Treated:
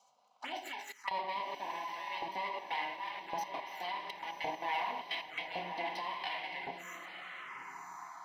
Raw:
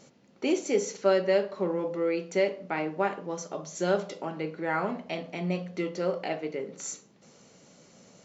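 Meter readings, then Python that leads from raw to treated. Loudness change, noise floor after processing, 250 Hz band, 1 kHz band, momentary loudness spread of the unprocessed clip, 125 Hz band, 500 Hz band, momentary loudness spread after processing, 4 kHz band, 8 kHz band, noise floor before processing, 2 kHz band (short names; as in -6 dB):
-9.5 dB, -64 dBFS, -21.5 dB, -0.5 dB, 10 LU, -22.5 dB, -18.5 dB, 9 LU, 0.0 dB, n/a, -60 dBFS, -3.0 dB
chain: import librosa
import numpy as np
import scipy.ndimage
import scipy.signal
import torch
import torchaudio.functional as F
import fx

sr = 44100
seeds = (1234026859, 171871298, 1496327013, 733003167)

y = fx.lower_of_two(x, sr, delay_ms=1.0)
y = fx.dynamic_eq(y, sr, hz=970.0, q=4.6, threshold_db=-47.0, ratio=4.0, max_db=8)
y = fx.room_shoebox(y, sr, seeds[0], volume_m3=950.0, walls='furnished', distance_m=1.9)
y = fx.level_steps(y, sr, step_db=17)
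y = fx.low_shelf(y, sr, hz=220.0, db=-5.0)
y = fx.filter_lfo_highpass(y, sr, shape='saw_up', hz=0.9, low_hz=580.0, high_hz=1800.0, q=0.95)
y = fx.lowpass(y, sr, hz=3100.0, slope=6)
y = fx.echo_diffused(y, sr, ms=1040, feedback_pct=41, wet_db=-7.0)
y = fx.env_phaser(y, sr, low_hz=310.0, high_hz=1300.0, full_db=-41.0)
y = y * 10.0 ** (8.0 / 20.0)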